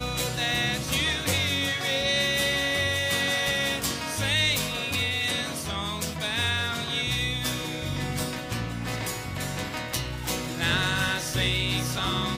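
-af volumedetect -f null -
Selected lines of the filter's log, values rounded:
mean_volume: -27.6 dB
max_volume: -12.2 dB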